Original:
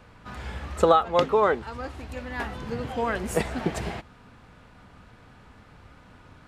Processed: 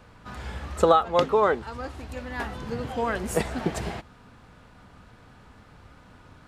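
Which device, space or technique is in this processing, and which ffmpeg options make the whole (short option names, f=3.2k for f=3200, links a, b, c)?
exciter from parts: -filter_complex "[0:a]asplit=2[a][b];[b]highpass=f=2.1k:w=0.5412,highpass=f=2.1k:w=1.3066,asoftclip=type=tanh:threshold=-24.5dB,volume=-12.5dB[c];[a][c]amix=inputs=2:normalize=0"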